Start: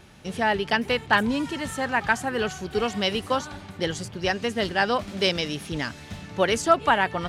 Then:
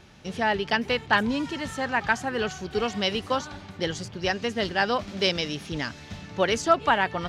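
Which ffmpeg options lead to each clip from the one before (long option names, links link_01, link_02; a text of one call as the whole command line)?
ffmpeg -i in.wav -af "highshelf=frequency=7400:width_type=q:width=1.5:gain=-6,volume=-1.5dB" out.wav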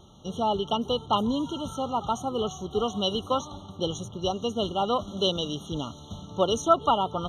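ffmpeg -i in.wav -af "afftfilt=real='re*eq(mod(floor(b*sr/1024/1400),2),0)':imag='im*eq(mod(floor(b*sr/1024/1400),2),0)':win_size=1024:overlap=0.75" out.wav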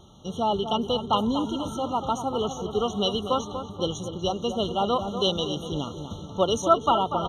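ffmpeg -i in.wav -filter_complex "[0:a]asplit=2[link_01][link_02];[link_02]adelay=241,lowpass=frequency=1900:poles=1,volume=-8.5dB,asplit=2[link_03][link_04];[link_04]adelay=241,lowpass=frequency=1900:poles=1,volume=0.53,asplit=2[link_05][link_06];[link_06]adelay=241,lowpass=frequency=1900:poles=1,volume=0.53,asplit=2[link_07][link_08];[link_08]adelay=241,lowpass=frequency=1900:poles=1,volume=0.53,asplit=2[link_09][link_10];[link_10]adelay=241,lowpass=frequency=1900:poles=1,volume=0.53,asplit=2[link_11][link_12];[link_12]adelay=241,lowpass=frequency=1900:poles=1,volume=0.53[link_13];[link_01][link_03][link_05][link_07][link_09][link_11][link_13]amix=inputs=7:normalize=0,volume=1dB" out.wav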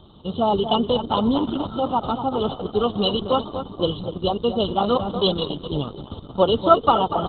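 ffmpeg -i in.wav -af "volume=6dB" -ar 48000 -c:a libopus -b:a 8k out.opus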